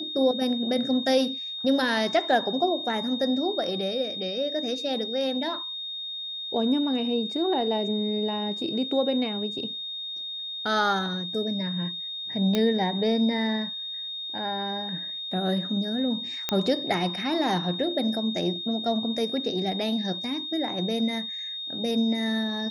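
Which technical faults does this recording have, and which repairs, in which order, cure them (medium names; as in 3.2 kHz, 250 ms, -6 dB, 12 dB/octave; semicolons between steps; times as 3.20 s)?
whine 3.7 kHz -32 dBFS
12.55 s: pop -11 dBFS
16.49 s: pop -9 dBFS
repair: de-click; band-stop 3.7 kHz, Q 30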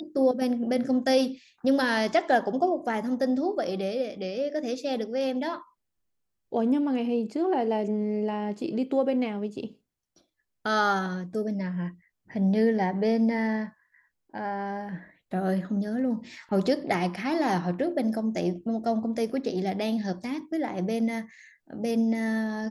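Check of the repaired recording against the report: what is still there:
nothing left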